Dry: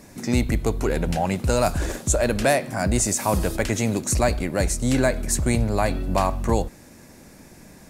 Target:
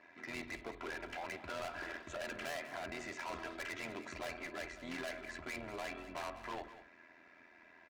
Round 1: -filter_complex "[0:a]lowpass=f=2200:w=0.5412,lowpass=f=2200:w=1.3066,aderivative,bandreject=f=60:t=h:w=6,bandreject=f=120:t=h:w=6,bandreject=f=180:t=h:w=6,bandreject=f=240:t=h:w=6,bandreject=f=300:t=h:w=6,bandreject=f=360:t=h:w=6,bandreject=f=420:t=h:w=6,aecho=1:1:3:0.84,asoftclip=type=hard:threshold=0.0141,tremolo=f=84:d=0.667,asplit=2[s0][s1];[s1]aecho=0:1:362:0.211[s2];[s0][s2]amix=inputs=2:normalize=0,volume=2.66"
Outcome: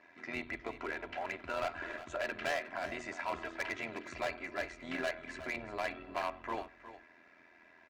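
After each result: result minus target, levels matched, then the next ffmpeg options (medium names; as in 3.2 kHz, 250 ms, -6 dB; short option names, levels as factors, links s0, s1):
echo 166 ms late; hard clipper: distortion -6 dB
-filter_complex "[0:a]lowpass=f=2200:w=0.5412,lowpass=f=2200:w=1.3066,aderivative,bandreject=f=60:t=h:w=6,bandreject=f=120:t=h:w=6,bandreject=f=180:t=h:w=6,bandreject=f=240:t=h:w=6,bandreject=f=300:t=h:w=6,bandreject=f=360:t=h:w=6,bandreject=f=420:t=h:w=6,aecho=1:1:3:0.84,asoftclip=type=hard:threshold=0.0141,tremolo=f=84:d=0.667,asplit=2[s0][s1];[s1]aecho=0:1:196:0.211[s2];[s0][s2]amix=inputs=2:normalize=0,volume=2.66"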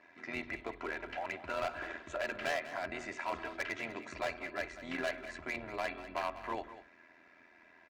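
hard clipper: distortion -6 dB
-filter_complex "[0:a]lowpass=f=2200:w=0.5412,lowpass=f=2200:w=1.3066,aderivative,bandreject=f=60:t=h:w=6,bandreject=f=120:t=h:w=6,bandreject=f=180:t=h:w=6,bandreject=f=240:t=h:w=6,bandreject=f=300:t=h:w=6,bandreject=f=360:t=h:w=6,bandreject=f=420:t=h:w=6,aecho=1:1:3:0.84,asoftclip=type=hard:threshold=0.00501,tremolo=f=84:d=0.667,asplit=2[s0][s1];[s1]aecho=0:1:196:0.211[s2];[s0][s2]amix=inputs=2:normalize=0,volume=2.66"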